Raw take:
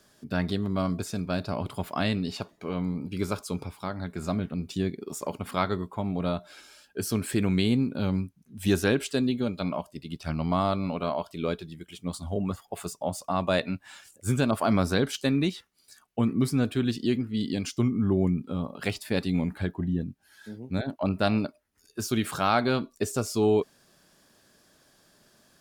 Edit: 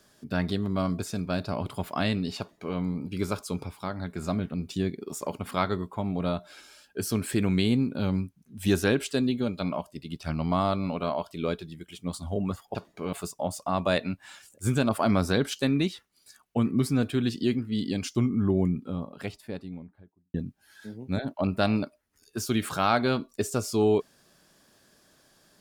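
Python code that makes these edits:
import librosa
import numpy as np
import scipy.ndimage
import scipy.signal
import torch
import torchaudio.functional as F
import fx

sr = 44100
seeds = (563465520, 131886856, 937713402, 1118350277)

y = fx.studio_fade_out(x, sr, start_s=18.01, length_s=1.95)
y = fx.edit(y, sr, fx.duplicate(start_s=2.39, length_s=0.38, to_s=12.75), tone=tone)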